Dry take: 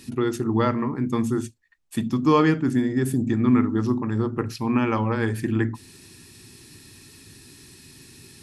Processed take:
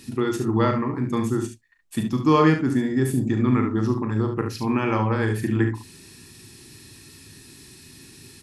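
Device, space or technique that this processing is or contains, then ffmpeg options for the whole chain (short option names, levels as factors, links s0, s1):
slapback doubling: -filter_complex "[0:a]asplit=3[s0][s1][s2];[s1]adelay=38,volume=0.398[s3];[s2]adelay=71,volume=0.422[s4];[s0][s3][s4]amix=inputs=3:normalize=0"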